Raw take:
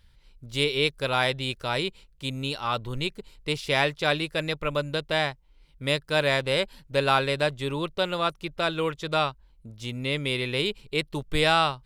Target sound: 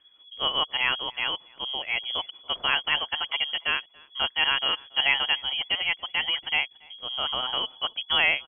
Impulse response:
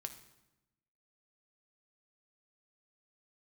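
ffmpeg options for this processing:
-filter_complex "[0:a]atempo=1.4,lowpass=f=2900:t=q:w=0.5098,lowpass=f=2900:t=q:w=0.6013,lowpass=f=2900:t=q:w=0.9,lowpass=f=2900:t=q:w=2.563,afreqshift=-3400,asplit=2[s0][s1];[s1]adelay=282,lowpass=f=1300:p=1,volume=0.075,asplit=2[s2][s3];[s3]adelay=282,lowpass=f=1300:p=1,volume=0.16[s4];[s0][s2][s4]amix=inputs=3:normalize=0"

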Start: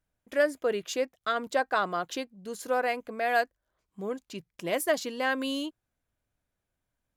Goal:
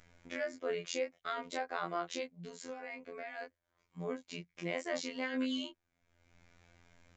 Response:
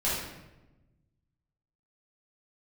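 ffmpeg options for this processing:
-filter_complex "[0:a]equalizer=f=2200:t=o:w=0.29:g=9,asplit=2[s0][s1];[s1]acompressor=mode=upward:threshold=0.0316:ratio=2.5,volume=1.33[s2];[s0][s2]amix=inputs=2:normalize=0,alimiter=limit=0.158:level=0:latency=1:release=42,asplit=3[s3][s4][s5];[s3]afade=t=out:st=2.31:d=0.02[s6];[s4]acompressor=threshold=0.0355:ratio=6,afade=t=in:st=2.31:d=0.02,afade=t=out:st=3.41:d=0.02[s7];[s5]afade=t=in:st=3.41:d=0.02[s8];[s6][s7][s8]amix=inputs=3:normalize=0,flanger=delay=20:depth=5.2:speed=0.51,afftfilt=real='hypot(re,im)*cos(PI*b)':imag='0':win_size=2048:overlap=0.75,aresample=16000,aresample=44100,volume=0.501"

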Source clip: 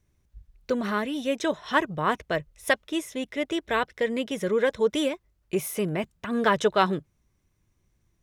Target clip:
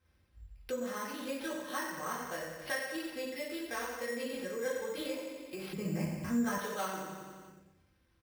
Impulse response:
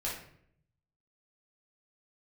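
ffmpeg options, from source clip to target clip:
-filter_complex "[0:a]highpass=63,equalizer=f=2500:w=0.34:g=5,aecho=1:1:88|176|264|352|440|528|616:0.355|0.202|0.115|0.0657|0.0375|0.0213|0.0122[s0];[1:a]atrim=start_sample=2205[s1];[s0][s1]afir=irnorm=-1:irlink=0,acompressor=threshold=0.00631:ratio=2,asettb=1/sr,asplit=3[s2][s3][s4];[s2]atrim=end=5.734[s5];[s3]atrim=start=5.73:end=6.58,asetpts=PTS-STARTPTS,afade=t=in:d=0.004:c=qsin,afade=t=out:st=0.846:d=0.004:c=qsin,bass=f=250:g=14,treble=f=4000:g=-12[s6];[s4]atrim=start=6.576[s7];[s5][s6]acrossfade=d=0.004:c1=hsin:c2=qsin[s8];[s8][s7]acrossfade=d=0.004:c1=qsin:c2=hsin,acrusher=samples=6:mix=1:aa=0.000001,aecho=1:1:3.8:0.45,volume=0.562"

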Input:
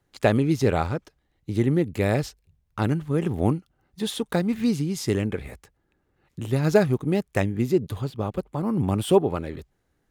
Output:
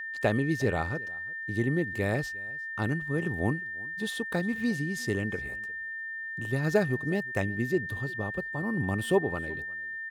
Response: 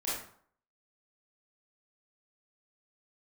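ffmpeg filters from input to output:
-af "aecho=1:1:356:0.0708,aeval=exprs='val(0)+0.0398*sin(2*PI*1800*n/s)':c=same,volume=0.473"

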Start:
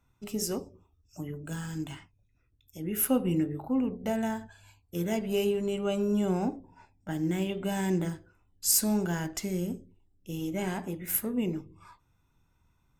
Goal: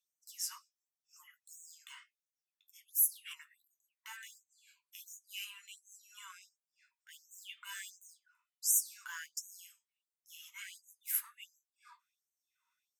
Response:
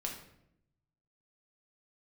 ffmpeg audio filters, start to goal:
-filter_complex "[0:a]asplit=3[s0][s1][s2];[s0]afade=t=out:st=2.87:d=0.02[s3];[s1]aeval=exprs='0.178*(cos(1*acos(clip(val(0)/0.178,-1,1)))-cos(1*PI/2))+0.0562*(cos(5*acos(clip(val(0)/0.178,-1,1)))-cos(5*PI/2))':c=same,afade=t=in:st=2.87:d=0.02,afade=t=out:st=3.33:d=0.02[s4];[s2]afade=t=in:st=3.33:d=0.02[s5];[s3][s4][s5]amix=inputs=3:normalize=0,flanger=delay=6.7:depth=6.3:regen=-49:speed=0.27:shape=sinusoidal,afftfilt=real='re*gte(b*sr/1024,890*pow(5900/890,0.5+0.5*sin(2*PI*1.4*pts/sr)))':imag='im*gte(b*sr/1024,890*pow(5900/890,0.5+0.5*sin(2*PI*1.4*pts/sr)))':win_size=1024:overlap=0.75"

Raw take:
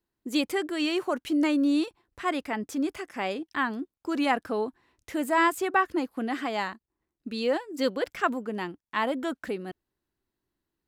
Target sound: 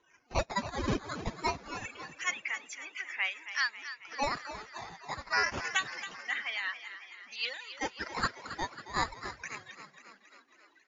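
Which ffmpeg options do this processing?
-filter_complex "[0:a]aeval=exprs='val(0)+0.5*0.0282*sgn(val(0))':c=same,afftdn=nr=35:nf=-36,aphaser=in_gain=1:out_gain=1:delay=2.4:decay=0.24:speed=0.94:type=sinusoidal,highpass=f=2200:t=q:w=2.2,acrusher=samples=9:mix=1:aa=0.000001:lfo=1:lforange=14.4:lforate=0.26,tremolo=f=5.2:d=0.6,asplit=2[s0][s1];[s1]asplit=7[s2][s3][s4][s5][s6][s7][s8];[s2]adelay=272,afreqshift=47,volume=0.251[s9];[s3]adelay=544,afreqshift=94,volume=0.153[s10];[s4]adelay=816,afreqshift=141,volume=0.0933[s11];[s5]adelay=1088,afreqshift=188,volume=0.0569[s12];[s6]adelay=1360,afreqshift=235,volume=0.0347[s13];[s7]adelay=1632,afreqshift=282,volume=0.0211[s14];[s8]adelay=1904,afreqshift=329,volume=0.0129[s15];[s9][s10][s11][s12][s13][s14][s15]amix=inputs=7:normalize=0[s16];[s0][s16]amix=inputs=2:normalize=0" -ar 16000 -c:a libmp3lame -b:a 48k

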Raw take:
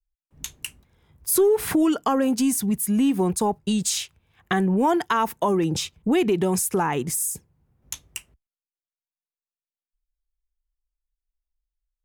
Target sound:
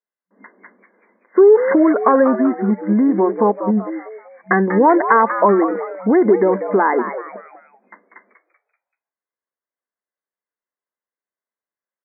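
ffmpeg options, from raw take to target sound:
-filter_complex "[0:a]aecho=1:1:1.9:0.33,afftfilt=real='re*between(b*sr/4096,190,2100)':imag='im*between(b*sr/4096,190,2100)':win_size=4096:overlap=0.75,asplit=5[s0][s1][s2][s3][s4];[s1]adelay=192,afreqshift=110,volume=0.316[s5];[s2]adelay=384,afreqshift=220,volume=0.12[s6];[s3]adelay=576,afreqshift=330,volume=0.0457[s7];[s4]adelay=768,afreqshift=440,volume=0.0174[s8];[s0][s5][s6][s7][s8]amix=inputs=5:normalize=0,volume=2.66"

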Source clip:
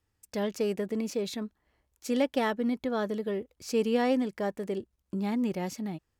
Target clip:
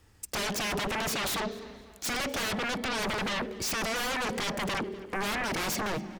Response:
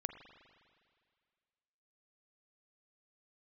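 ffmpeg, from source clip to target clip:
-filter_complex "[0:a]alimiter=level_in=1.26:limit=0.0631:level=0:latency=1:release=15,volume=0.794,asplit=2[s0][s1];[s1]aresample=22050,aresample=44100[s2];[1:a]atrim=start_sample=2205,asetrate=66150,aresample=44100[s3];[s2][s3]afir=irnorm=-1:irlink=0,volume=0.794[s4];[s0][s4]amix=inputs=2:normalize=0,aeval=exprs='0.0668*sin(PI/2*5.62*val(0)/0.0668)':c=same,asplit=2[s5][s6];[s6]adelay=248,lowpass=f=4800:p=1,volume=0.106,asplit=2[s7][s8];[s8]adelay=248,lowpass=f=4800:p=1,volume=0.54,asplit=2[s9][s10];[s10]adelay=248,lowpass=f=4800:p=1,volume=0.54,asplit=2[s11][s12];[s12]adelay=248,lowpass=f=4800:p=1,volume=0.54[s13];[s5][s7][s9][s11][s13]amix=inputs=5:normalize=0,volume=0.596"

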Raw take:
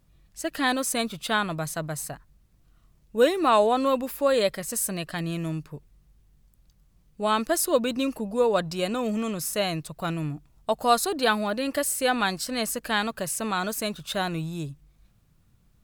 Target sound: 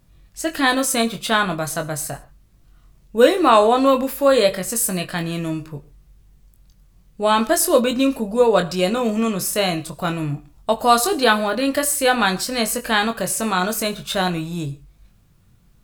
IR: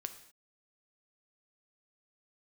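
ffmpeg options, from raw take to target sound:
-filter_complex "[0:a]asplit=2[s0][s1];[1:a]atrim=start_sample=2205,afade=t=out:st=0.19:d=0.01,atrim=end_sample=8820,adelay=22[s2];[s1][s2]afir=irnorm=-1:irlink=0,volume=0.668[s3];[s0][s3]amix=inputs=2:normalize=0,volume=2"

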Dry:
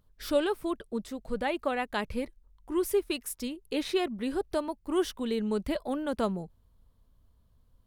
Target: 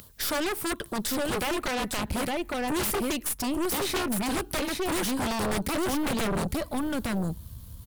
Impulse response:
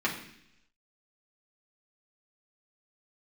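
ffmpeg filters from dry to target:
-filter_complex "[0:a]acrossover=split=530|1700[s0][s1][s2];[s0]acompressor=threshold=0.0224:ratio=4[s3];[s1]acompressor=threshold=0.0158:ratio=4[s4];[s2]acompressor=threshold=0.00282:ratio=4[s5];[s3][s4][s5]amix=inputs=3:normalize=0,asplit=2[s6][s7];[1:a]atrim=start_sample=2205,afade=t=out:st=0.24:d=0.01,atrim=end_sample=11025[s8];[s7][s8]afir=irnorm=-1:irlink=0,volume=0.0282[s9];[s6][s9]amix=inputs=2:normalize=0,crystalizer=i=4:c=0,acompressor=mode=upward:threshold=0.00355:ratio=2.5,highpass=73,aecho=1:1:859:0.596,aeval=exprs='(mod(15*val(0)+1,2)-1)/15':c=same,asubboost=boost=4:cutoff=200,aeval=exprs='0.133*(cos(1*acos(clip(val(0)/0.133,-1,1)))-cos(1*PI/2))+0.0168*(cos(8*acos(clip(val(0)/0.133,-1,1)))-cos(8*PI/2))':c=same,aeval=exprs='0.112*sin(PI/2*2.82*val(0)/0.112)':c=same,volume=0.708"

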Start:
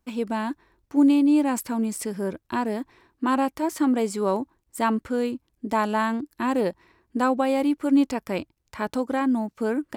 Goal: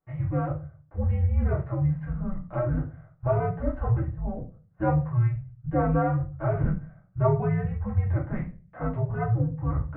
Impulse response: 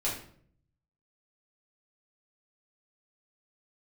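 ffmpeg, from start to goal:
-filter_complex "[0:a]asettb=1/sr,asplit=3[s0][s1][s2];[s0]atrim=end=3.984[s3];[s1]atrim=start=3.98:end=4.79,asetpts=PTS-STARTPTS,afade=t=in:d=0.004:c=qsin,afade=t=out:st=0.806:d=0.004:c=qsin,acrossover=split=420|1300[s4][s5][s6];[s4]acompressor=threshold=0.01:ratio=4[s7];[s5]acompressor=threshold=0.0251:ratio=4[s8];[s6]acompressor=threshold=0.00282:ratio=4[s9];[s7][s8][s9]amix=inputs=3:normalize=0[s10];[s2]atrim=start=4.786[s11];[s3][s10]acrossfade=d=0.004:c1=hsin:c2=qsin[s12];[s12][s11]acrossfade=d=0.004:c1=qsin:c2=hsin[s13];[1:a]atrim=start_sample=2205,asetrate=70560,aresample=44100[s14];[s13][s14]afir=irnorm=-1:irlink=0,highpass=f=180:t=q:w=0.5412,highpass=f=180:t=q:w=1.307,lowpass=f=2200:t=q:w=0.5176,lowpass=f=2200:t=q:w=0.7071,lowpass=f=2200:t=q:w=1.932,afreqshift=-370,volume=0.631"

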